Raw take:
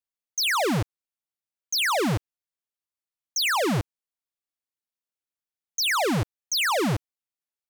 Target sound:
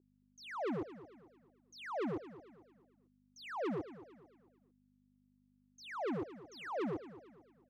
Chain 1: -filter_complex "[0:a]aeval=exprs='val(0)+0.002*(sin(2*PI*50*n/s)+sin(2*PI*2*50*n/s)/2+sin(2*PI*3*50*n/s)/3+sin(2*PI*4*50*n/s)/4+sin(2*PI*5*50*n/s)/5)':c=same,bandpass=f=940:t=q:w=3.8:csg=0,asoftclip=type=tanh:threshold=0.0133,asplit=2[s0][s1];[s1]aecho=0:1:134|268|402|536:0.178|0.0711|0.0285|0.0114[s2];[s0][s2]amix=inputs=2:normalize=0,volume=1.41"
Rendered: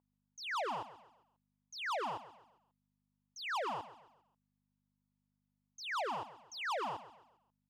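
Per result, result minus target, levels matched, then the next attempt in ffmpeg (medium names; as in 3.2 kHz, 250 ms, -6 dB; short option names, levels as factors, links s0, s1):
echo 90 ms early; 1 kHz band +5.0 dB
-filter_complex "[0:a]aeval=exprs='val(0)+0.002*(sin(2*PI*50*n/s)+sin(2*PI*2*50*n/s)/2+sin(2*PI*3*50*n/s)/3+sin(2*PI*4*50*n/s)/4+sin(2*PI*5*50*n/s)/5)':c=same,bandpass=f=940:t=q:w=3.8:csg=0,asoftclip=type=tanh:threshold=0.0133,asplit=2[s0][s1];[s1]aecho=0:1:224|448|672|896:0.178|0.0711|0.0285|0.0114[s2];[s0][s2]amix=inputs=2:normalize=0,volume=1.41"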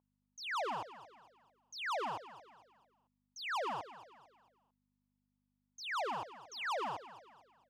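1 kHz band +5.0 dB
-filter_complex "[0:a]aeval=exprs='val(0)+0.002*(sin(2*PI*50*n/s)+sin(2*PI*2*50*n/s)/2+sin(2*PI*3*50*n/s)/3+sin(2*PI*4*50*n/s)/4+sin(2*PI*5*50*n/s)/5)':c=same,bandpass=f=370:t=q:w=3.8:csg=0,asoftclip=type=tanh:threshold=0.0133,asplit=2[s0][s1];[s1]aecho=0:1:224|448|672|896:0.178|0.0711|0.0285|0.0114[s2];[s0][s2]amix=inputs=2:normalize=0,volume=1.41"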